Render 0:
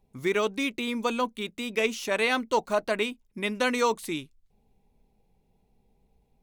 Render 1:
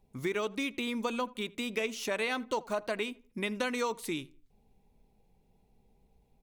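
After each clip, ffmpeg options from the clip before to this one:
-filter_complex "[0:a]acompressor=threshold=-31dB:ratio=3,asplit=2[a][b];[b]adelay=82,lowpass=f=1.8k:p=1,volume=-21dB,asplit=2[c][d];[d]adelay=82,lowpass=f=1.8k:p=1,volume=0.37,asplit=2[e][f];[f]adelay=82,lowpass=f=1.8k:p=1,volume=0.37[g];[a][c][e][g]amix=inputs=4:normalize=0"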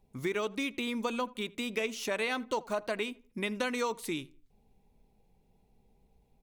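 -af anull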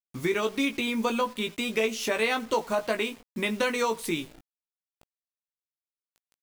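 -filter_complex "[0:a]acrusher=bits=8:mix=0:aa=0.000001,asplit=2[a][b];[b]adelay=18,volume=-6dB[c];[a][c]amix=inputs=2:normalize=0,volume=5dB"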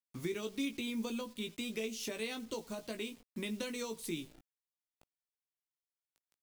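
-filter_complex "[0:a]acrossover=split=410|3000[a][b][c];[b]acompressor=threshold=-48dB:ratio=2.5[d];[a][d][c]amix=inputs=3:normalize=0,volume=-7.5dB"

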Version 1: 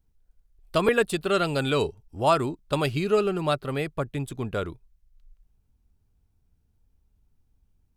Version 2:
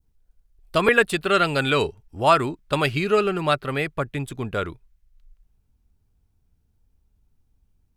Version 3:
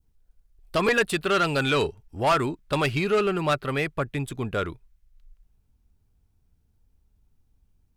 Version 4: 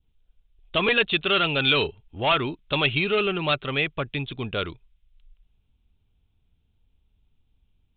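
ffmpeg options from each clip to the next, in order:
-af "adynamicequalizer=threshold=0.01:dfrequency=1900:dqfactor=0.89:tfrequency=1900:tqfactor=0.89:attack=5:release=100:ratio=0.375:range=4:mode=boostabove:tftype=bell,volume=1.5dB"
-af "asoftclip=type=tanh:threshold=-15.5dB"
-af "aexciter=amount=4.6:drive=4.2:freq=2.5k,aresample=8000,aresample=44100,volume=-1.5dB"

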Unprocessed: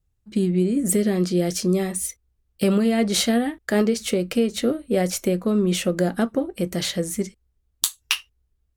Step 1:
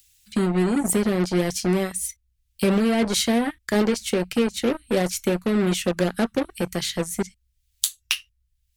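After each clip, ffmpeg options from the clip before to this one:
-filter_complex "[0:a]acrossover=split=160|1500|2100[a][b][c][d];[b]acrusher=bits=3:mix=0:aa=0.5[e];[d]acompressor=mode=upward:threshold=-35dB:ratio=2.5[f];[a][e][c][f]amix=inputs=4:normalize=0,volume=-1dB"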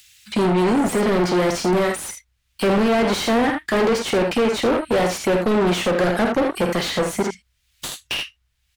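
-filter_complex "[0:a]aecho=1:1:50|79:0.211|0.237,asplit=2[a][b];[b]highpass=f=720:p=1,volume=35dB,asoftclip=type=tanh:threshold=-1.5dB[c];[a][c]amix=inputs=2:normalize=0,lowpass=f=1.4k:p=1,volume=-6dB,volume=-7.5dB"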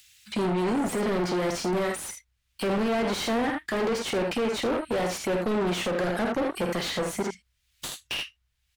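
-af "alimiter=limit=-16dB:level=0:latency=1:release=91,volume=-5.5dB"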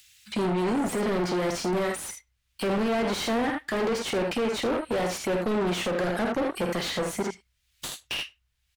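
-filter_complex "[0:a]asplit=2[a][b];[b]adelay=100,highpass=300,lowpass=3.4k,asoftclip=type=hard:threshold=-30.5dB,volume=-28dB[c];[a][c]amix=inputs=2:normalize=0"

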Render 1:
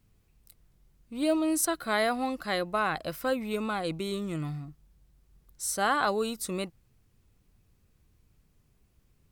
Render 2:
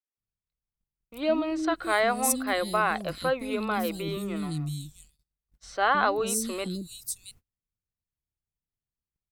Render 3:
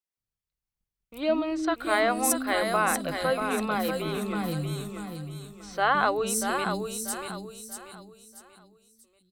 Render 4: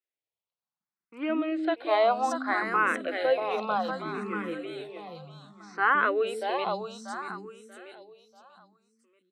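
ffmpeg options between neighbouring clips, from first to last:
-filter_complex "[0:a]acrossover=split=320|4300[a][b][c];[a]adelay=170[d];[c]adelay=670[e];[d][b][e]amix=inputs=3:normalize=0,agate=range=-32dB:threshold=-56dB:ratio=16:detection=peak,volume=3.5dB"
-af "aecho=1:1:637|1274|1911|2548:0.473|0.161|0.0547|0.0186"
-filter_complex "[0:a]highpass=310,lowpass=2.9k,asplit=2[a][b];[b]afreqshift=0.64[c];[a][c]amix=inputs=2:normalize=1,volume=3.5dB"

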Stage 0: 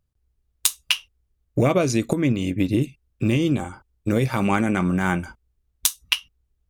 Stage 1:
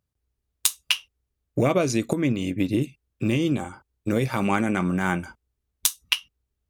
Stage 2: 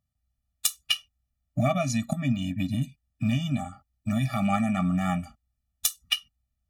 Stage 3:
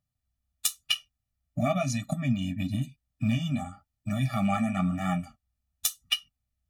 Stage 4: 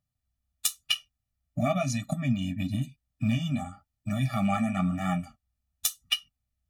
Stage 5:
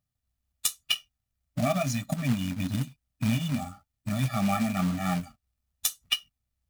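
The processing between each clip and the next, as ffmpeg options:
-af "highpass=f=110:p=1,volume=-1.5dB"
-af "afftfilt=real='re*eq(mod(floor(b*sr/1024/280),2),0)':imag='im*eq(mod(floor(b*sr/1024/280),2),0)':win_size=1024:overlap=0.75"
-af "flanger=delay=6.5:depth=5.9:regen=-37:speed=0.97:shape=sinusoidal,volume=2dB"
-af anull
-af "acrusher=bits=3:mode=log:mix=0:aa=0.000001"

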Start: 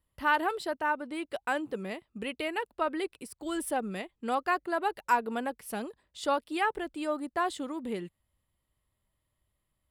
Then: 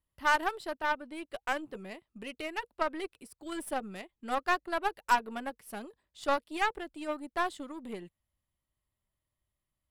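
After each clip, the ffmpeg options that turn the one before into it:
-af "bandreject=f=480:w=12,aeval=exprs='0.211*(cos(1*acos(clip(val(0)/0.211,-1,1)))-cos(1*PI/2))+0.0106*(cos(6*acos(clip(val(0)/0.211,-1,1)))-cos(6*PI/2))+0.0168*(cos(7*acos(clip(val(0)/0.211,-1,1)))-cos(7*PI/2))':c=same"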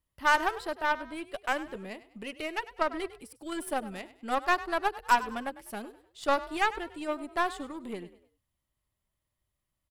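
-filter_complex "[0:a]asplit=4[a][b][c][d];[b]adelay=100,afreqshift=37,volume=-16dB[e];[c]adelay=200,afreqshift=74,volume=-24.4dB[f];[d]adelay=300,afreqshift=111,volume=-32.8dB[g];[a][e][f][g]amix=inputs=4:normalize=0,volume=2.5dB"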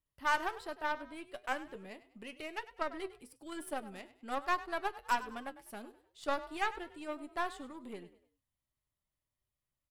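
-af "flanger=delay=6.4:depth=2:regen=73:speed=1.1:shape=triangular,volume=-3dB"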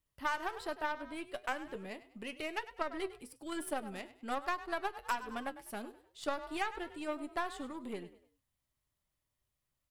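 -af "acompressor=threshold=-35dB:ratio=6,volume=4dB"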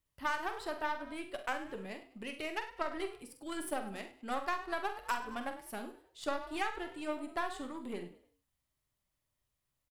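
-af "aecho=1:1:46|68:0.335|0.188"

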